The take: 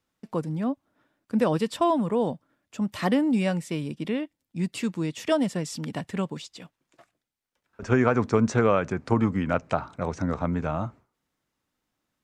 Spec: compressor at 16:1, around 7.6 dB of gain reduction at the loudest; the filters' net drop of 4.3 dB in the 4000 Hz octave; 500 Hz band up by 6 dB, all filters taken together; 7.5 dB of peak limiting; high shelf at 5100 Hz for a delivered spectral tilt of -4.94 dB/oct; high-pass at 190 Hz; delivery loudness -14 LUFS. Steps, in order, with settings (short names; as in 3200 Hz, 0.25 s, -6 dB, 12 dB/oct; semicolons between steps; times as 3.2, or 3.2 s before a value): HPF 190 Hz; bell 500 Hz +7.5 dB; bell 4000 Hz -4.5 dB; high shelf 5100 Hz -4 dB; compressor 16:1, threshold -19 dBFS; gain +15.5 dB; limiter -2 dBFS